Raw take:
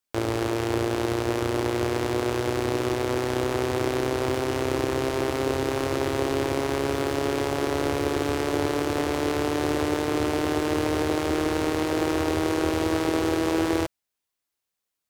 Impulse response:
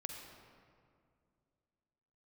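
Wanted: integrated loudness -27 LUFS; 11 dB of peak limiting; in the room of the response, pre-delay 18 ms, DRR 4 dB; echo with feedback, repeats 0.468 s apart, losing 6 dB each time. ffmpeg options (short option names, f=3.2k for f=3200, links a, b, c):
-filter_complex "[0:a]alimiter=limit=-21dB:level=0:latency=1,aecho=1:1:468|936|1404|1872|2340|2808:0.501|0.251|0.125|0.0626|0.0313|0.0157,asplit=2[a][b];[1:a]atrim=start_sample=2205,adelay=18[c];[b][c]afir=irnorm=-1:irlink=0,volume=-2dB[d];[a][d]amix=inputs=2:normalize=0,volume=3dB"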